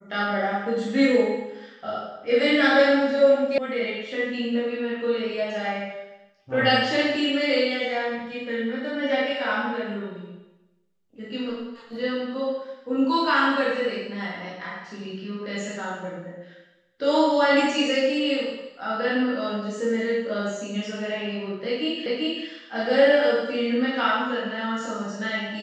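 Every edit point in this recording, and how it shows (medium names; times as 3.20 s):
3.58 s: sound stops dead
22.06 s: repeat of the last 0.39 s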